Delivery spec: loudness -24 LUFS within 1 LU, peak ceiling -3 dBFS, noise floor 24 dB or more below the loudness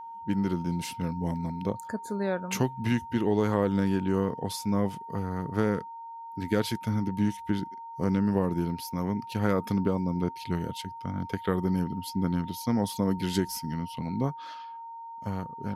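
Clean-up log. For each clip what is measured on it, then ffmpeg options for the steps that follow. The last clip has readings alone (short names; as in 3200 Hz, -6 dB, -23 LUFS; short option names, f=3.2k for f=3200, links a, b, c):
steady tone 920 Hz; tone level -39 dBFS; loudness -30.0 LUFS; peak -11.5 dBFS; loudness target -24.0 LUFS
-> -af "bandreject=f=920:w=30"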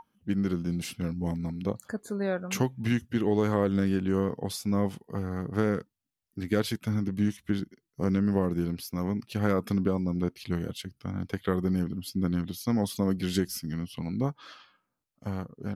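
steady tone none; loudness -30.0 LUFS; peak -12.0 dBFS; loudness target -24.0 LUFS
-> -af "volume=6dB"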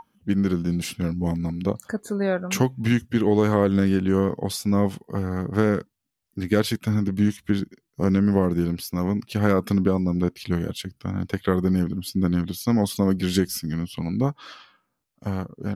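loudness -24.0 LUFS; peak -6.0 dBFS; noise floor -76 dBFS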